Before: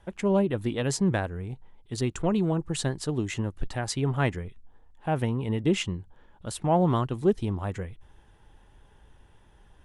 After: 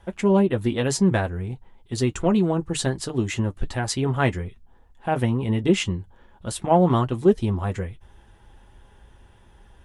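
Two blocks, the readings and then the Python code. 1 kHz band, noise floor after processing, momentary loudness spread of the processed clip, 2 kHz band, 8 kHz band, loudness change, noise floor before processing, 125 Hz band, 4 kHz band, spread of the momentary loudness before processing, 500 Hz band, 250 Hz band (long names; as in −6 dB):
+5.0 dB, −54 dBFS, 14 LU, +5.0 dB, +5.0 dB, +5.0 dB, −57 dBFS, +4.0 dB, +4.5 dB, 14 LU, +5.0 dB, +5.0 dB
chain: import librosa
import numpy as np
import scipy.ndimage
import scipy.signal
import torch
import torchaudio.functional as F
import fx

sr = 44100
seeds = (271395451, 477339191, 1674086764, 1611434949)

y = fx.notch_comb(x, sr, f0_hz=150.0)
y = y * librosa.db_to_amplitude(6.0)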